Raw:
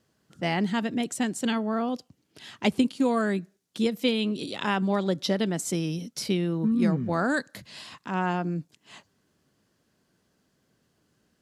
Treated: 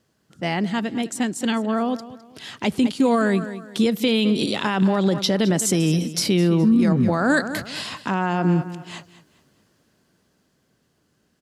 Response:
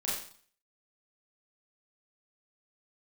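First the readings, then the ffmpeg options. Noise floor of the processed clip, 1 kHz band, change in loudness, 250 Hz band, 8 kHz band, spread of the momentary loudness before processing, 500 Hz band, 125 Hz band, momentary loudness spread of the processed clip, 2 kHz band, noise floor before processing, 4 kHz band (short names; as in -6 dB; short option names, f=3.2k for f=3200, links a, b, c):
-67 dBFS, +5.0 dB, +6.0 dB, +6.5 dB, +9.0 dB, 8 LU, +6.0 dB, +8.0 dB, 12 LU, +5.5 dB, -72 dBFS, +6.5 dB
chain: -af "dynaudnorm=f=290:g=17:m=11.5dB,aecho=1:1:209|418|627:0.158|0.0507|0.0162,alimiter=limit=-13dB:level=0:latency=1:release=56,volume=2.5dB"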